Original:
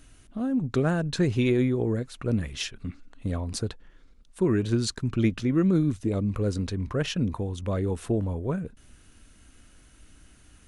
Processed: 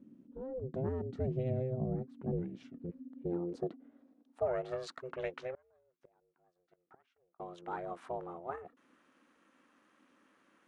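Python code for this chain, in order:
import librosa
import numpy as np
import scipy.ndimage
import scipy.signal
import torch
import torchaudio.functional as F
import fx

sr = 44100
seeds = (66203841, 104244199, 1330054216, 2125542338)

y = x * np.sin(2.0 * np.pi * 260.0 * np.arange(len(x)) / sr)
y = fx.gate_flip(y, sr, shuts_db=-25.0, range_db=-34, at=(5.54, 7.4))
y = fx.filter_sweep_bandpass(y, sr, from_hz=210.0, to_hz=1200.0, start_s=2.94, end_s=4.85, q=1.5)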